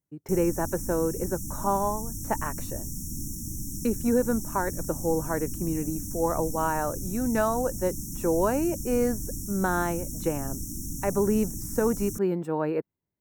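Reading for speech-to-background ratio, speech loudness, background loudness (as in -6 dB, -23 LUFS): 6.5 dB, -28.5 LUFS, -35.0 LUFS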